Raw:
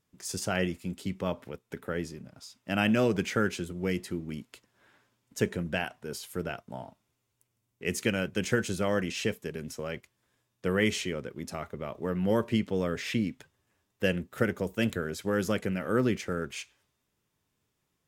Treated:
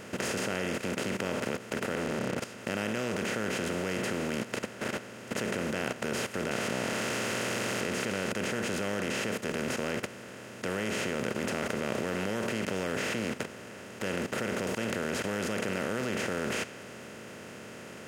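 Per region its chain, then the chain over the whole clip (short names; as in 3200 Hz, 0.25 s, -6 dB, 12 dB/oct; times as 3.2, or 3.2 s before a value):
1.95–2.38 compressor 4:1, threshold -49 dBFS + Chebyshev low-pass 510 Hz, order 8 + sample leveller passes 3
6.51–8.32 switching spikes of -23.5 dBFS + LPF 5300 Hz
whole clip: per-bin compression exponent 0.2; low shelf 64 Hz -3.5 dB; level quantiser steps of 13 dB; gain -6 dB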